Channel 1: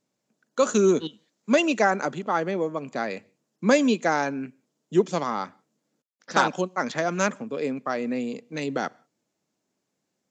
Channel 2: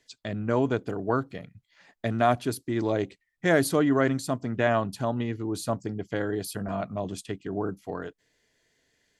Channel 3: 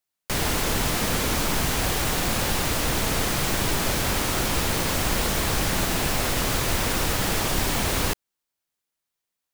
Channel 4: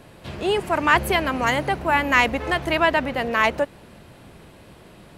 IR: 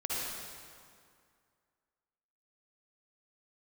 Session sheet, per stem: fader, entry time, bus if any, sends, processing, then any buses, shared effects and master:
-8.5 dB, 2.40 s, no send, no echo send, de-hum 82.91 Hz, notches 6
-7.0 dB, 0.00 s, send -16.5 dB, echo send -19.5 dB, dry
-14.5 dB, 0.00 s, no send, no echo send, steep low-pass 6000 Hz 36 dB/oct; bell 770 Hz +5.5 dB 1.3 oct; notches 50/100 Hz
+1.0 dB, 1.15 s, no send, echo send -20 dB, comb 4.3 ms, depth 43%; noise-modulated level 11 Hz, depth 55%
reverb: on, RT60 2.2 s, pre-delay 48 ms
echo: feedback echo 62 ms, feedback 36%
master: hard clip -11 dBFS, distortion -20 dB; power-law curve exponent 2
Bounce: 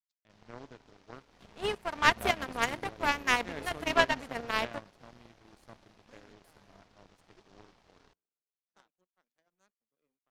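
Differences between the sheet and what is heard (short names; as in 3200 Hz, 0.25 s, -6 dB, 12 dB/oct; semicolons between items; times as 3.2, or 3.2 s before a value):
stem 1 -8.5 dB -> -19.0 dB; master: missing hard clip -11 dBFS, distortion -20 dB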